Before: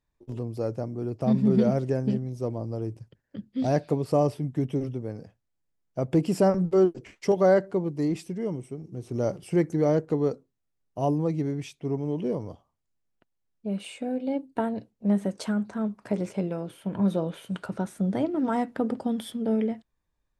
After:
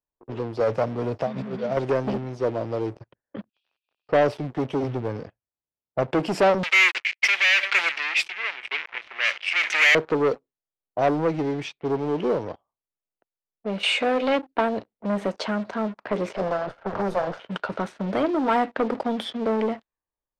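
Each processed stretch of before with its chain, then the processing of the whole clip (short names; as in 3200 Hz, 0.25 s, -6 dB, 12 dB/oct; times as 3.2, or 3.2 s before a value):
0.6–1.77 bell 350 Hz -10 dB 0.35 oct + negative-ratio compressor -30 dBFS + HPF 48 Hz 24 dB/oct
3.49–4.09 CVSD 32 kbps + Chebyshev high-pass 2400 Hz, order 10 + compressor, threshold -55 dBFS
4.82–6.03 HPF 40 Hz 24 dB/oct + low shelf 170 Hz +10 dB
6.63–9.95 sample leveller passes 5 + resonant high-pass 2300 Hz, resonance Q 3.4 + chopper 1 Hz, depth 60%, duty 35%
13.83–14.39 bell 710 Hz -2 dB 2 oct + overdrive pedal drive 19 dB, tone 7800 Hz, clips at -19.5 dBFS
16.36–17.4 minimum comb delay 1.4 ms + band shelf 2900 Hz -13.5 dB 1.1 oct + three-band squash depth 70%
whole clip: sample leveller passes 3; low-pass opened by the level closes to 1000 Hz, open at -16.5 dBFS; three-band isolator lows -13 dB, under 370 Hz, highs -16 dB, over 5000 Hz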